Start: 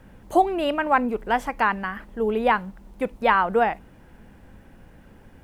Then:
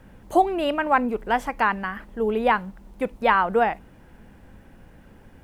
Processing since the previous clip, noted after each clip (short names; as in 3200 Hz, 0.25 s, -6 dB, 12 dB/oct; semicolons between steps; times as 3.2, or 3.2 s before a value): nothing audible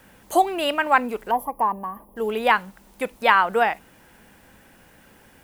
spectral gain 1.31–2.17, 1200–10000 Hz -26 dB; tilt +3 dB/oct; gain +2 dB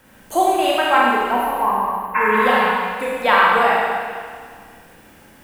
Schroeder reverb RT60 1.9 s, combs from 29 ms, DRR -5 dB; spectral repair 2.18–2.6, 870–2700 Hz after; gain -1 dB